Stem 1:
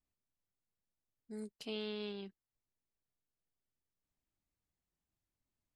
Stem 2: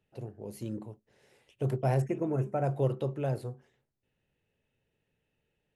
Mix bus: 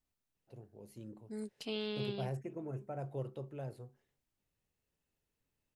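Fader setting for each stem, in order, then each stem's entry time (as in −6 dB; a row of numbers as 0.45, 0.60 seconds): +2.5, −12.0 decibels; 0.00, 0.35 seconds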